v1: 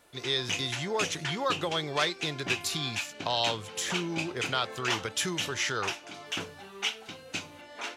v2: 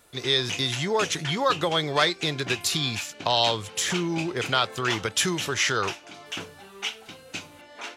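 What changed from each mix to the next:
speech +6.5 dB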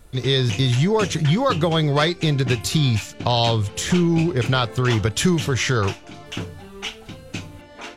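master: remove HPF 710 Hz 6 dB/oct

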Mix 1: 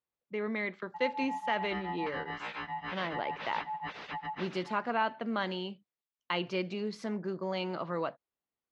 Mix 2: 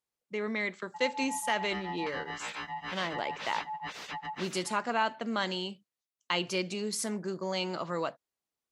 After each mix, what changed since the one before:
background: send -11.0 dB; master: remove air absorption 260 m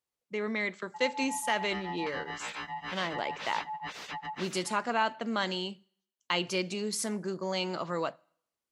speech: send on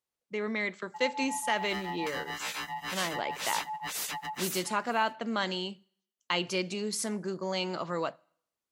background: remove air absorption 200 m

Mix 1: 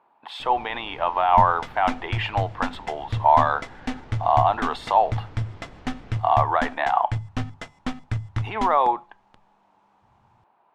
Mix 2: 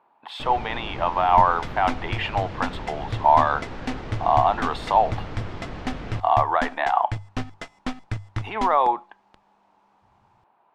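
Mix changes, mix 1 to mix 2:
first sound +11.0 dB; reverb: off

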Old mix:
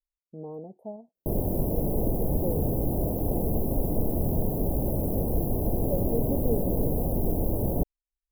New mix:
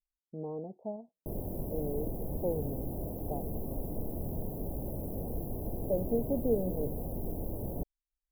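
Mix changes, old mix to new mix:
speech: add brick-wall FIR low-pass 1300 Hz; background -10.5 dB

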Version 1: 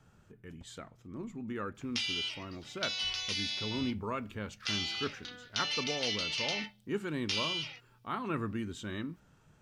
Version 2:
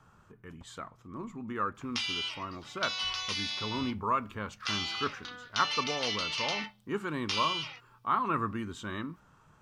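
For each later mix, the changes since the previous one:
master: add bell 1100 Hz +12.5 dB 0.73 oct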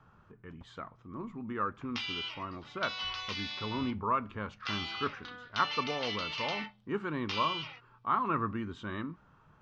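master: add air absorption 190 m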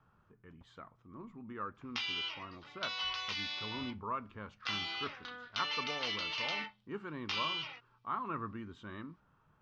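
speech -8.0 dB

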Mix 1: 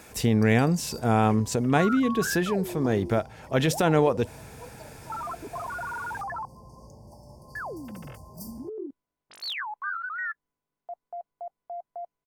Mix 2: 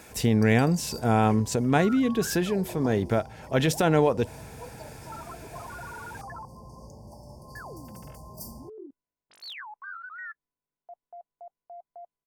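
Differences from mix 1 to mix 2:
first sound: send on; second sound -7.5 dB; master: add notch 1200 Hz, Q 18

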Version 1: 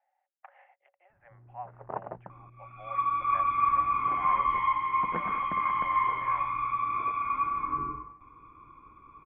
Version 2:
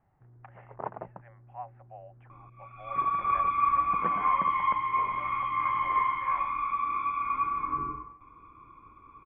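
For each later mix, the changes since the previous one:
first sound: entry -1.10 s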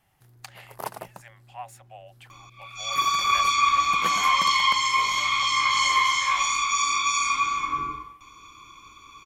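speech: remove air absorption 130 m; master: remove Gaussian blur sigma 5.6 samples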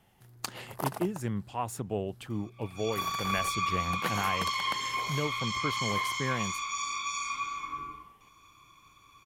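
speech: remove rippled Chebyshev high-pass 540 Hz, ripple 9 dB; second sound -10.5 dB

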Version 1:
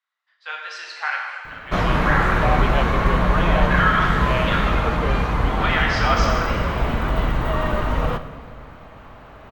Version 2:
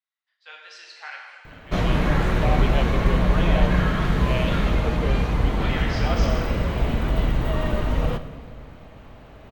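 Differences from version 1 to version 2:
speech -6.0 dB; master: add bell 1200 Hz -9 dB 1.5 oct

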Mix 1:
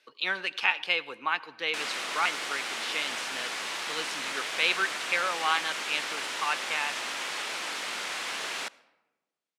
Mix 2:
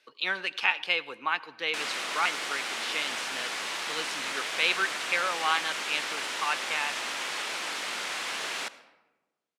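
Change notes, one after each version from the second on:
background: send +7.0 dB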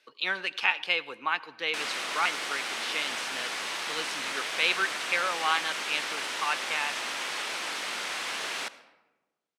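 background: add notch 7100 Hz, Q 28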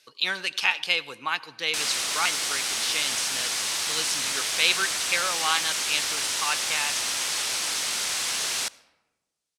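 background: send -6.5 dB; master: remove three-band isolator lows -19 dB, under 180 Hz, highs -15 dB, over 3100 Hz

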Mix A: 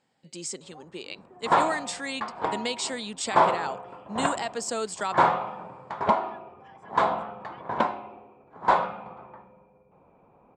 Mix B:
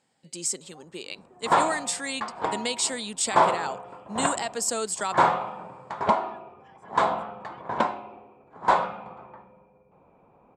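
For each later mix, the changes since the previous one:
first sound -3.5 dB; master: remove air absorption 75 m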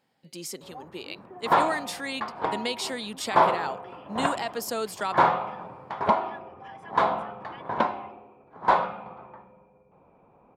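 first sound +10.5 dB; master: remove synth low-pass 7900 Hz, resonance Q 6.4

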